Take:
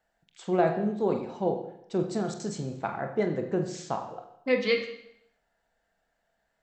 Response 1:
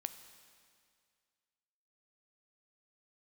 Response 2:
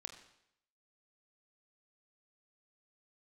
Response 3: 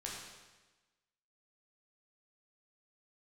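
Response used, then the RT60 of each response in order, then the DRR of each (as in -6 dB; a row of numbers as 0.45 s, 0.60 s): 2; 2.1 s, 0.75 s, 1.2 s; 9.5 dB, 4.5 dB, -4.0 dB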